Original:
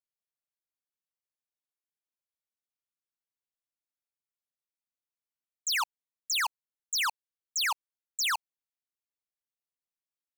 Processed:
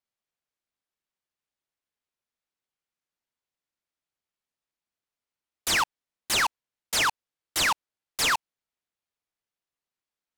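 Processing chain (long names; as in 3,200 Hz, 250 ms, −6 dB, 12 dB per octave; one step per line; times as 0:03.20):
low-pass filter 7,600 Hz 12 dB per octave
short delay modulated by noise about 3,000 Hz, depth 0.031 ms
level +5.5 dB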